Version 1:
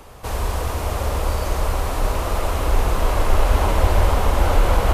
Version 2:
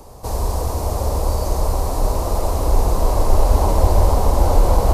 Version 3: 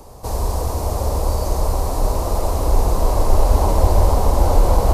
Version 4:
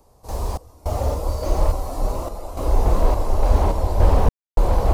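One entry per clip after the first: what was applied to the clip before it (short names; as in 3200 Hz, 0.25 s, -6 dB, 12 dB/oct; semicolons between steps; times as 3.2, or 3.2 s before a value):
band shelf 2100 Hz -12.5 dB; gain +2.5 dB
nothing audible
spectral noise reduction 6 dB; random-step tremolo 3.5 Hz, depth 100%; slew limiter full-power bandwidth 58 Hz; gain +2 dB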